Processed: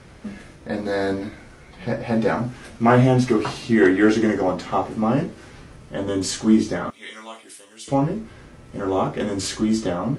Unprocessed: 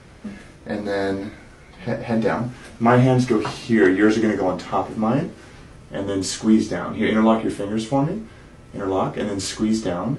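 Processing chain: 6.90–7.88 s: differentiator

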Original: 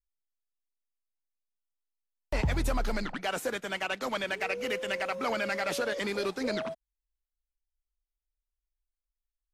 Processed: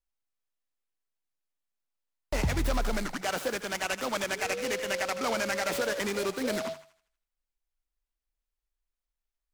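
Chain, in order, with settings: hum notches 50/100/150 Hz; on a send: thinning echo 80 ms, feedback 46%, high-pass 840 Hz, level -10.5 dB; on the sum: delay time shaken by noise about 3.5 kHz, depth 0.047 ms; trim +1 dB

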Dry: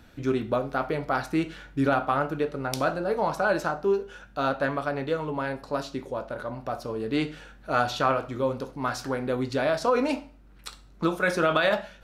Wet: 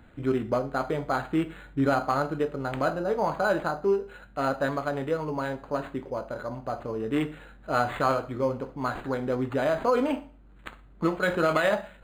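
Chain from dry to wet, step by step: decimation joined by straight lines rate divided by 8×

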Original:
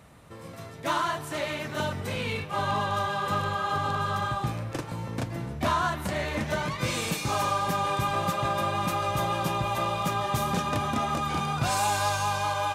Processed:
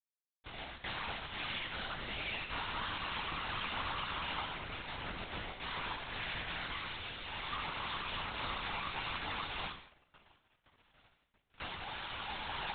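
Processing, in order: comb filter that takes the minimum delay 6 ms; gate with hold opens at -35 dBFS; tilt EQ +4.5 dB/octave; peak limiter -24.5 dBFS, peak gain reduction 17.5 dB; compression 10:1, threshold -38 dBFS, peak gain reduction 9 dB; 9.68–11.60 s: band-pass filter 450 Hz, Q 1.1; crossover distortion -43.5 dBFS; chorus voices 2, 0.65 Hz, delay 12 ms, depth 4.2 ms; integer overflow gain 41 dB; gated-style reverb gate 260 ms falling, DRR 4 dB; LPC vocoder at 8 kHz whisper; endings held to a fixed fall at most 170 dB/s; trim +12.5 dB

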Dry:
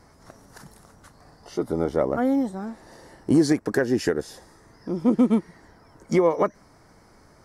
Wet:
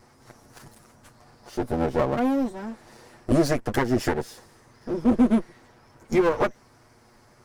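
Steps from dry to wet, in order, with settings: comb filter that takes the minimum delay 8.3 ms

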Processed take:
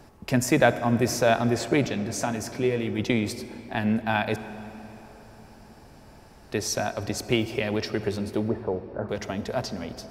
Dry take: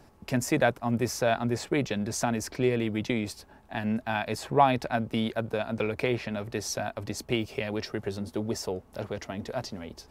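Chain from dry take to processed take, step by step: 1.88–2.99 s: feedback comb 97 Hz, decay 0.19 s, harmonics all, mix 60%; 4.36–6.52 s: room tone; 8.48–9.09 s: elliptic low-pass 1.7 kHz; reverberation RT60 4.0 s, pre-delay 39 ms, DRR 12 dB; trim +4.5 dB

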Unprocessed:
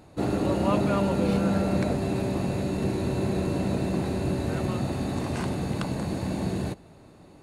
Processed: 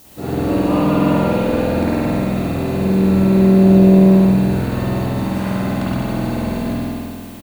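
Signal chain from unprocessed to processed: added noise blue -44 dBFS; on a send: bouncing-ball echo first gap 120 ms, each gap 0.75×, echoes 5; on the sum: spring tank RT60 2.1 s, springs 47 ms, chirp 25 ms, DRR -8.5 dB; trim -2.5 dB

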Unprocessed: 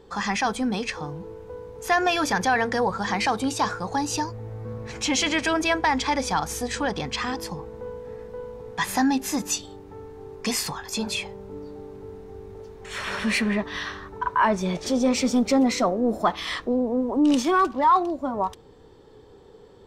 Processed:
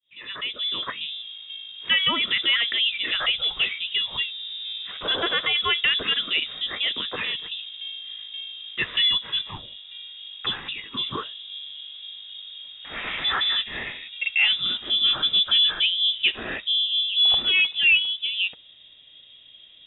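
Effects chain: fade-in on the opening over 0.93 s; frequency inversion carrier 3.7 kHz

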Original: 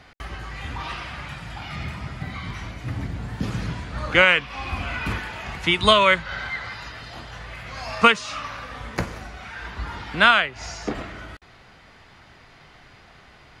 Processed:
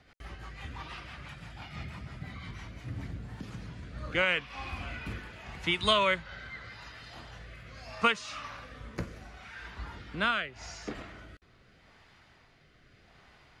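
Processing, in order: rotary cabinet horn 6 Hz, later 0.8 Hz, at 2.59 s; 3.25–3.83 s: compression 4:1, threshold -31 dBFS, peak gain reduction 8 dB; trim -8 dB

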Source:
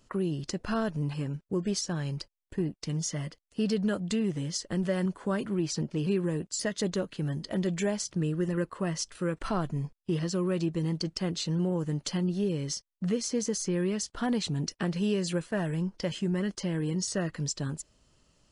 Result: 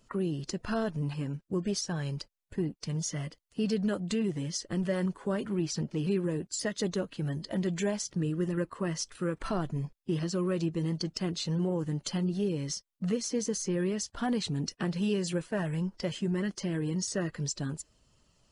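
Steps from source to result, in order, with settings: coarse spectral quantiser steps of 15 dB; trim -1 dB

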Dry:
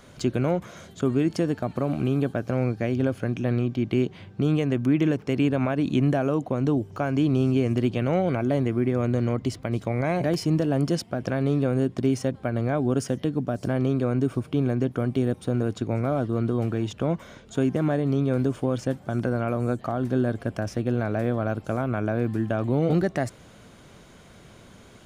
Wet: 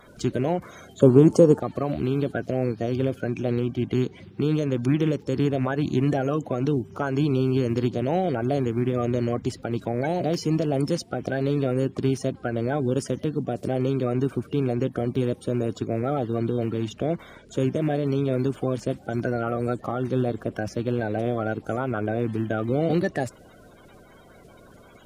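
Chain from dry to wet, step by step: coarse spectral quantiser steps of 30 dB; 1.01–1.60 s: graphic EQ 125/250/500/1000/2000/4000/8000 Hz +6/+5/+10/+10/-8/-6/+11 dB

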